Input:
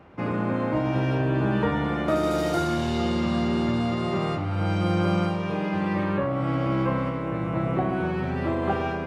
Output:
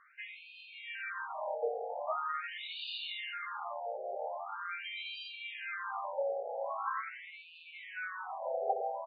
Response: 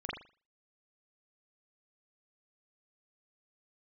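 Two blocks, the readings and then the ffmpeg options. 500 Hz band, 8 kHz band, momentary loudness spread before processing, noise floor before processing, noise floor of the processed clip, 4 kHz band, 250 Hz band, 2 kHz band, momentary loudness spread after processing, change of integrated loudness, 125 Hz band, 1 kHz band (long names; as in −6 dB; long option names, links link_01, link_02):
−11.5 dB, below −30 dB, 4 LU, −29 dBFS, −55 dBFS, −5.0 dB, below −40 dB, −7.0 dB, 11 LU, −13.0 dB, below −40 dB, −8.5 dB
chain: -filter_complex "[0:a]equalizer=frequency=610:width=0.52:gain=-4.5,asplit=2[link_01][link_02];[link_02]adelay=758,volume=-9dB,highshelf=frequency=4000:gain=-17.1[link_03];[link_01][link_03]amix=inputs=2:normalize=0,afftfilt=real='re*between(b*sr/1024,590*pow(3400/590,0.5+0.5*sin(2*PI*0.43*pts/sr))/1.41,590*pow(3400/590,0.5+0.5*sin(2*PI*0.43*pts/sr))*1.41)':imag='im*between(b*sr/1024,590*pow(3400/590,0.5+0.5*sin(2*PI*0.43*pts/sr))/1.41,590*pow(3400/590,0.5+0.5*sin(2*PI*0.43*pts/sr))*1.41)':win_size=1024:overlap=0.75"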